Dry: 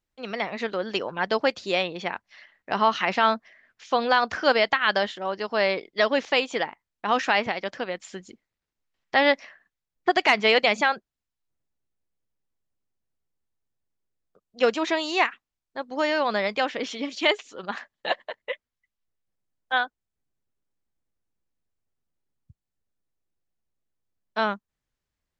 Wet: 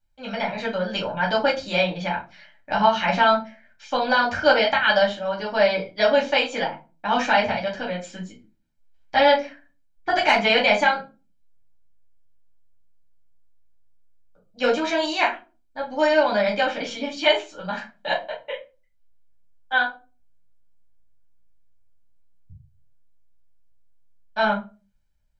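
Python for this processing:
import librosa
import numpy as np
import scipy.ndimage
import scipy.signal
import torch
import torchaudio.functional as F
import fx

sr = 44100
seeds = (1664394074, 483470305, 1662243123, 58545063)

y = fx.low_shelf(x, sr, hz=160.0, db=4.0)
y = y + 0.56 * np.pad(y, (int(1.3 * sr / 1000.0), 0))[:len(y)]
y = fx.room_shoebox(y, sr, seeds[0], volume_m3=130.0, walls='furnished', distance_m=2.4)
y = y * librosa.db_to_amplitude(-4.5)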